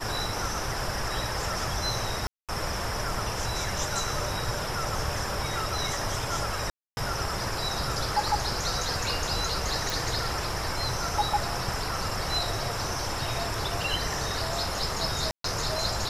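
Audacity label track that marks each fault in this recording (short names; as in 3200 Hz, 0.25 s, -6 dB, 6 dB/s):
2.270000	2.490000	gap 0.217 s
6.700000	6.970000	gap 0.271 s
9.900000	9.900000	pop
15.310000	15.440000	gap 0.133 s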